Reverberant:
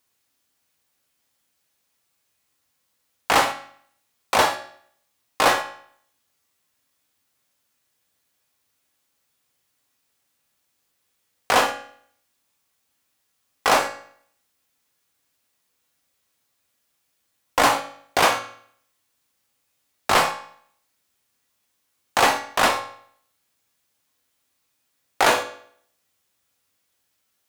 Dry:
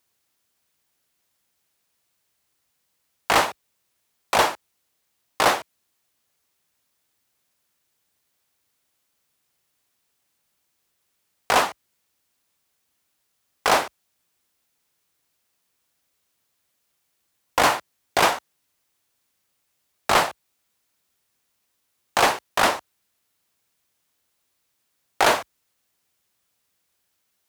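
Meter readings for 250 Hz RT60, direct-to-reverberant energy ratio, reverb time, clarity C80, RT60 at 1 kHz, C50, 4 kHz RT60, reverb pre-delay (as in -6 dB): 0.60 s, 5.0 dB, 0.60 s, 14.0 dB, 0.60 s, 10.5 dB, 0.55 s, 4 ms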